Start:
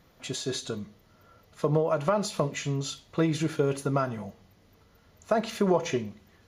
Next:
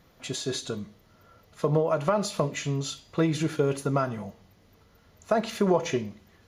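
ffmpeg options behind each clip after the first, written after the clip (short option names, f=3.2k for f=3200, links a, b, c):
-af "bandreject=f=303:t=h:w=4,bandreject=f=606:t=h:w=4,bandreject=f=909:t=h:w=4,bandreject=f=1.212k:t=h:w=4,bandreject=f=1.515k:t=h:w=4,bandreject=f=1.818k:t=h:w=4,bandreject=f=2.121k:t=h:w=4,bandreject=f=2.424k:t=h:w=4,bandreject=f=2.727k:t=h:w=4,bandreject=f=3.03k:t=h:w=4,bandreject=f=3.333k:t=h:w=4,bandreject=f=3.636k:t=h:w=4,bandreject=f=3.939k:t=h:w=4,bandreject=f=4.242k:t=h:w=4,bandreject=f=4.545k:t=h:w=4,bandreject=f=4.848k:t=h:w=4,bandreject=f=5.151k:t=h:w=4,bandreject=f=5.454k:t=h:w=4,bandreject=f=5.757k:t=h:w=4,bandreject=f=6.06k:t=h:w=4,bandreject=f=6.363k:t=h:w=4,bandreject=f=6.666k:t=h:w=4,bandreject=f=6.969k:t=h:w=4,bandreject=f=7.272k:t=h:w=4,bandreject=f=7.575k:t=h:w=4,bandreject=f=7.878k:t=h:w=4,bandreject=f=8.181k:t=h:w=4,bandreject=f=8.484k:t=h:w=4,bandreject=f=8.787k:t=h:w=4,bandreject=f=9.09k:t=h:w=4,volume=1dB"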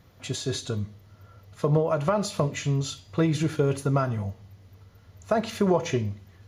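-af "equalizer=f=98:w=2.3:g=15"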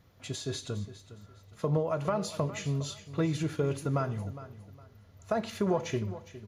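-af "aecho=1:1:410|820|1230:0.178|0.048|0.013,volume=-6dB"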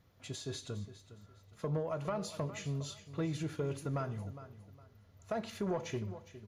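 -af "asoftclip=type=tanh:threshold=-20.5dB,volume=-5.5dB"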